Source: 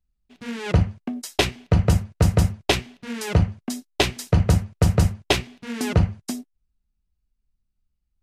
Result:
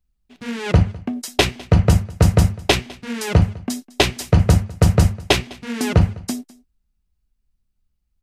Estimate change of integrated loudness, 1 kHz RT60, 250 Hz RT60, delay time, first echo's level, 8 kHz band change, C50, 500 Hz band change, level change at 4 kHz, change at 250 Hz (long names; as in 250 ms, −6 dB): +4.0 dB, no reverb audible, no reverb audible, 204 ms, −22.5 dB, +4.0 dB, no reverb audible, +4.0 dB, +4.0 dB, +4.0 dB